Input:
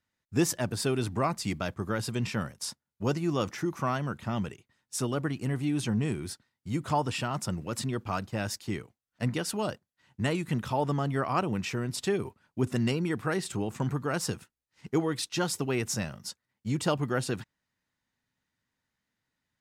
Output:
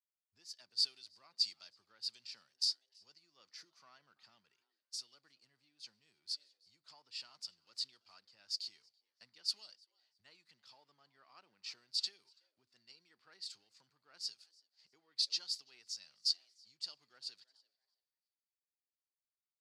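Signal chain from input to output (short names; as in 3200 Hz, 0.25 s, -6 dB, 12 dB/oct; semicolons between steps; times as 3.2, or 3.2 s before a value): G.711 law mismatch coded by mu; frequency-shifting echo 0.333 s, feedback 45%, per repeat +140 Hz, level -23 dB; compressor 5:1, threshold -37 dBFS, peak gain reduction 15.5 dB; band-pass 4600 Hz, Q 9.8; three-band expander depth 100%; gain +8.5 dB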